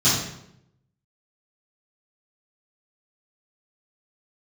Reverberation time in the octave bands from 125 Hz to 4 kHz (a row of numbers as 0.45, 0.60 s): 1.1, 0.95, 0.80, 0.70, 0.65, 0.60 s